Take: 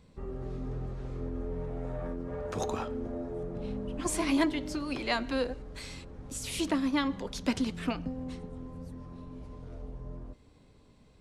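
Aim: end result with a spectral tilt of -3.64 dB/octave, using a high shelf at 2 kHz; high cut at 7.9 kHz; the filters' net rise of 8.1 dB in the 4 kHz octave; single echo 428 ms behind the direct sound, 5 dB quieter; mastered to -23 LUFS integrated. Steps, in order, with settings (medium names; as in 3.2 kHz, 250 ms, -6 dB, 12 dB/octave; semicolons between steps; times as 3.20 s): low-pass 7.9 kHz; treble shelf 2 kHz +6 dB; peaking EQ 4 kHz +4.5 dB; delay 428 ms -5 dB; trim +8 dB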